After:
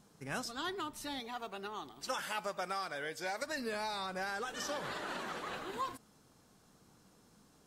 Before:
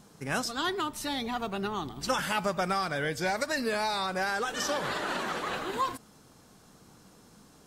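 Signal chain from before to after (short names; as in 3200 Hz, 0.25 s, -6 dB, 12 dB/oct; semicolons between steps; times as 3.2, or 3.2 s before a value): 1.2–3.42 tone controls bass -13 dB, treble +1 dB; gain -8.5 dB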